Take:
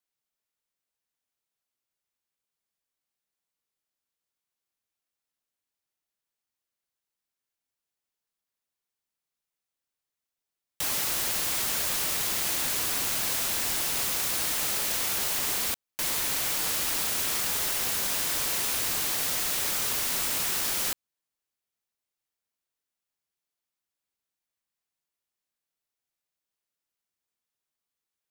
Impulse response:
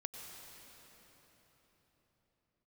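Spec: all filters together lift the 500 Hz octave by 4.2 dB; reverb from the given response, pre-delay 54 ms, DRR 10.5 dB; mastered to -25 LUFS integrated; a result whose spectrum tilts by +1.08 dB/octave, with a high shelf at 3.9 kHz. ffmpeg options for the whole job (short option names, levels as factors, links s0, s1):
-filter_complex "[0:a]equalizer=f=500:t=o:g=5,highshelf=f=3900:g=9,asplit=2[s0][s1];[1:a]atrim=start_sample=2205,adelay=54[s2];[s1][s2]afir=irnorm=-1:irlink=0,volume=0.376[s3];[s0][s3]amix=inputs=2:normalize=0,volume=0.422"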